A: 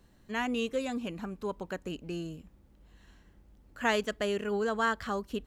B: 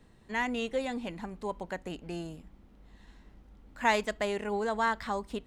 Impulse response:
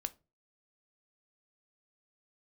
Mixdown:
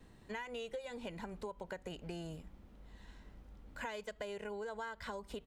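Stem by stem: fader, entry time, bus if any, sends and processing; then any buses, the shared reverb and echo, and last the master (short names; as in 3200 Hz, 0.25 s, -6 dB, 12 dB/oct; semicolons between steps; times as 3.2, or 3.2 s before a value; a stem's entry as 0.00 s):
-9.0 dB, 0.00 s, no send, dry
-0.5 dB, 1.9 ms, no send, compressor, threshold -34 dBFS, peak gain reduction 13.5 dB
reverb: off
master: compressor 6:1, threshold -40 dBFS, peak gain reduction 10.5 dB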